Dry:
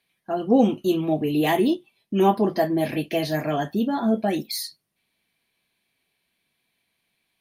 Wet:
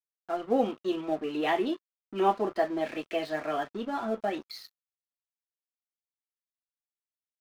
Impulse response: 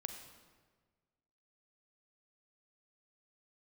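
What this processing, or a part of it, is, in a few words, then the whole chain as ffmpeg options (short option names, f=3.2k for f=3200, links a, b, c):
pocket radio on a weak battery: -af "highpass=370,lowpass=3.5k,aeval=exprs='sgn(val(0))*max(abs(val(0))-0.00668,0)':c=same,equalizer=f=1.3k:t=o:w=0.25:g=7.5,volume=-4dB"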